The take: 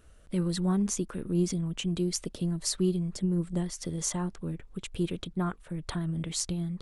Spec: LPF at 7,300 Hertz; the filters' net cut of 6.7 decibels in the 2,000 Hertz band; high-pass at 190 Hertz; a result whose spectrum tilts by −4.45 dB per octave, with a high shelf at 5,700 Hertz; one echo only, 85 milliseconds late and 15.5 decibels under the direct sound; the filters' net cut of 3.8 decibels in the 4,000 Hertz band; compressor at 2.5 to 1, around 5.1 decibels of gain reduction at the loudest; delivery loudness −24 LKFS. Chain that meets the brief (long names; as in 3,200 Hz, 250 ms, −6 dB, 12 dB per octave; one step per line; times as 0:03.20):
high-pass filter 190 Hz
low-pass filter 7,300 Hz
parametric band 2,000 Hz −8.5 dB
parametric band 4,000 Hz −6 dB
high-shelf EQ 5,700 Hz +7 dB
downward compressor 2.5 to 1, threshold −33 dBFS
single-tap delay 85 ms −15.5 dB
level +13 dB